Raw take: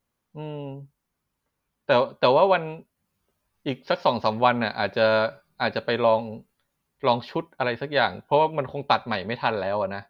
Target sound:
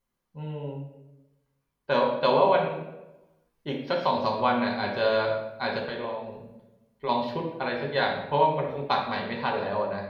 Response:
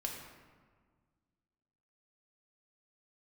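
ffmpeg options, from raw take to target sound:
-filter_complex "[0:a]asettb=1/sr,asplit=3[a][b][c];[a]atrim=end=5.864[d];[b]atrim=start=5.86:end=7.09,asetpts=PTS-STARTPTS,afade=t=in:d=0.004:c=qsin,afade=t=out:st=1.226:d=0.004:c=qsin,acompressor=threshold=-27dB:ratio=6[e];[c]atrim=start=7.086[f];[d][e]acrossfade=d=0.004:c1=hsin:c2=qsin[g];[g][f]acrossfade=d=0.004:c1=qsin:c2=hsin[h];[1:a]atrim=start_sample=2205,asetrate=83790,aresample=44100[i];[h][i]afir=irnorm=-1:irlink=0,volume=2dB"

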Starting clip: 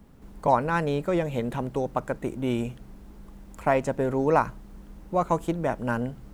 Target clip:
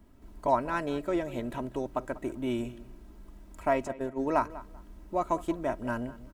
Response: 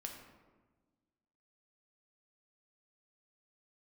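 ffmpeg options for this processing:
-filter_complex "[0:a]asplit=3[a][b][c];[a]afade=t=out:st=3.87:d=0.02[d];[b]agate=range=-14dB:threshold=-24dB:ratio=16:detection=peak,afade=t=in:st=3.87:d=0.02,afade=t=out:st=4.49:d=0.02[e];[c]afade=t=in:st=4.49:d=0.02[f];[d][e][f]amix=inputs=3:normalize=0,aecho=1:1:3.1:0.6,asplit=2[g][h];[h]adelay=194,lowpass=f=3.3k:p=1,volume=-17dB,asplit=2[i][j];[j]adelay=194,lowpass=f=3.3k:p=1,volume=0.23[k];[i][k]amix=inputs=2:normalize=0[l];[g][l]amix=inputs=2:normalize=0,volume=-6dB"

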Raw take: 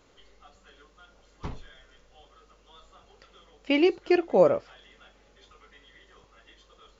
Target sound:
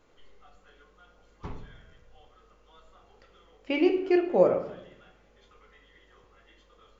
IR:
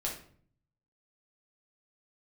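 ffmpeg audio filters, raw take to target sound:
-filter_complex "[0:a]asplit=2[a][b];[1:a]atrim=start_sample=2205,asetrate=26460,aresample=44100,lowpass=2.9k[c];[b][c]afir=irnorm=-1:irlink=0,volume=-6dB[d];[a][d]amix=inputs=2:normalize=0,volume=-7dB"

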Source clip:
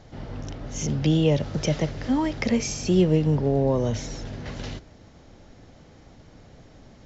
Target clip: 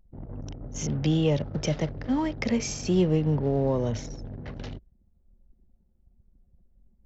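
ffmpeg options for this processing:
-af "anlmdn=3.98,acontrast=50,volume=-8.5dB"

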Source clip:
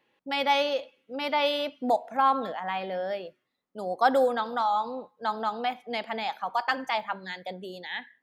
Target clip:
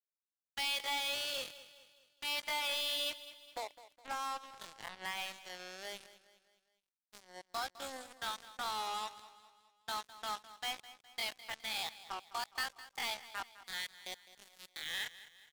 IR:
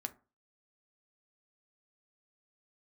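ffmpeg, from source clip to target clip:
-af "acompressor=threshold=-24dB:ratio=12,bandpass=f=5.7k:t=q:w=0.93:csg=0,volume=33dB,asoftclip=hard,volume=-33dB,atempo=0.53,acrusher=bits=6:mix=0:aa=0.5,aecho=1:1:207|414|621|828:0.158|0.0745|0.035|0.0165,volume=3.5dB"

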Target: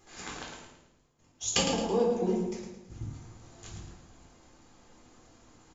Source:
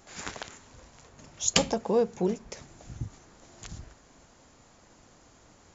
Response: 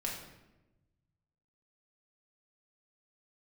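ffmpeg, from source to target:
-filter_complex "[0:a]asettb=1/sr,asplit=3[a][b][c];[a]atrim=end=0.654[d];[b]atrim=start=0.65:end=2.99,asetpts=PTS-STARTPTS,afade=t=in:d=0.004:c=qsin,afade=t=out:st=2.336:d=0.004:c=qsin,agate=range=-33dB:threshold=-41dB:ratio=3:detection=peak[e];[c]atrim=start=2.986[f];[d][e]acrossfade=d=0.004:c1=hsin:c2=qsin[g];[g][f]acrossfade=d=0.004:c1=qsin:c2=hsin,aecho=1:1:109|218|327|436|545:0.398|0.163|0.0669|0.0274|0.0112[h];[1:a]atrim=start_sample=2205,asetrate=74970,aresample=44100[i];[h][i]afir=irnorm=-1:irlink=0"

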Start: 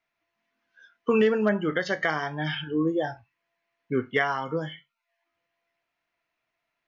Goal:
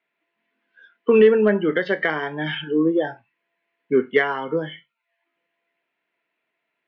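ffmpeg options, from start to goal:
-af "highpass=f=170:w=0.5412,highpass=f=170:w=1.3066,equalizer=f=410:t=q:w=4:g=6,equalizer=f=730:t=q:w=4:g=-5,equalizer=f=1.2k:t=q:w=4:g=-6,lowpass=f=3.4k:w=0.5412,lowpass=f=3.4k:w=1.3066,acontrast=27"

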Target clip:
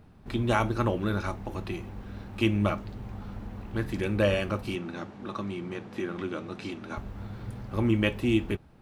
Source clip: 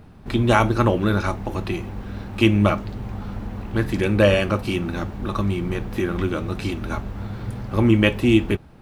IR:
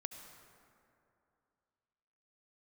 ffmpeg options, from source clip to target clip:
-filter_complex "[0:a]asettb=1/sr,asplit=3[a][b][c];[a]atrim=end=4.754[d];[b]atrim=start=4.75:end=6.97,asetpts=PTS-STARTPTS,afade=t=in:d=0.004:c=qsin,afade=t=out:st=2.216:d=0.004:c=qsin,highpass=170,lowpass=7.6k[e];[c]atrim=start=6.966[f];[d][e]acrossfade=d=0.004:c1=hsin:c2=qsin[g];[g][f]acrossfade=d=0.004:c1=qsin:c2=hsin,volume=-8.5dB"

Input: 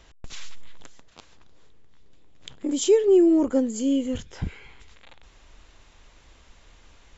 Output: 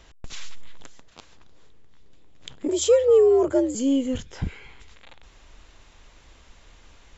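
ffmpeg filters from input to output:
-filter_complex "[0:a]acontrast=68,asettb=1/sr,asplit=3[a][b][c];[a]atrim=end=2.684[d];[b]atrim=start=2.68:end=3.75,asetpts=PTS-STARTPTS,afade=t=in:d=0.004:c=qsin,afade=t=out:st=1.066:d=0.004:c=qsin,afreqshift=77[e];[c]atrim=start=3.746[f];[d][e]acrossfade=d=0.004:c1=hsin:c2=qsin[g];[g][f]acrossfade=d=0.004:c1=qsin:c2=hsin,volume=-5dB"

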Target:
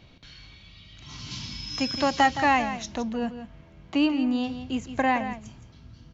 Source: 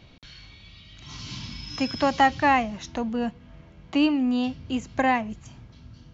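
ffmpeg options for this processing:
-filter_complex "[0:a]asettb=1/sr,asplit=3[a][b][c];[a]atrim=end=1.314[d];[b]atrim=start=1.31:end=2.96,asetpts=PTS-STARTPTS,afade=t=in:d=0.004:c=qsin,afade=t=out:st=1.646:d=0.004:c=qsin,aemphasis=mode=production:type=cd[e];[c]atrim=start=2.956[f];[d][e]acrossfade=d=0.004:c1=hsin:c2=qsin[g];[g][f]acrossfade=d=0.004:c1=qsin:c2=hsin,asplit=2[h][i];[i]aecho=0:1:167:0.282[j];[h][j]amix=inputs=2:normalize=0,volume=-1.5dB"

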